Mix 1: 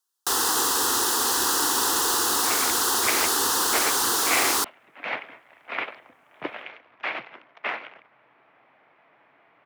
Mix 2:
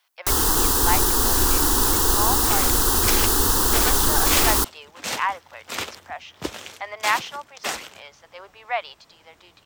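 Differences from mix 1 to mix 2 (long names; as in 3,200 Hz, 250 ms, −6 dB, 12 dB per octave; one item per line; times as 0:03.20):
speech: unmuted
second sound: remove loudspeaker in its box 100–2,500 Hz, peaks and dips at 130 Hz +8 dB, 280 Hz +4 dB, 660 Hz +5 dB, 2,200 Hz +5 dB
master: remove meter weighting curve A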